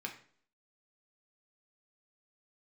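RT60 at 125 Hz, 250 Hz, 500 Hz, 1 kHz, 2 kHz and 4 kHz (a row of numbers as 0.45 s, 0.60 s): 0.55 s, 0.60 s, 0.55 s, 0.50 s, 0.45 s, 0.45 s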